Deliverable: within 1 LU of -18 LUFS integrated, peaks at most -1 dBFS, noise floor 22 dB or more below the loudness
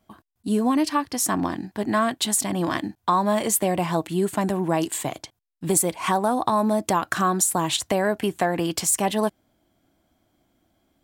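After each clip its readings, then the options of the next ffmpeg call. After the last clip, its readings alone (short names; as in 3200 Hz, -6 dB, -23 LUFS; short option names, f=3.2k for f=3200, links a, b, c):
loudness -23.0 LUFS; peak -7.0 dBFS; loudness target -18.0 LUFS
-> -af "volume=5dB"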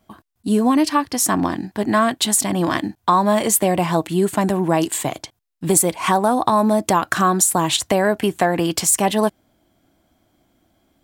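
loudness -18.0 LUFS; peak -2.0 dBFS; noise floor -67 dBFS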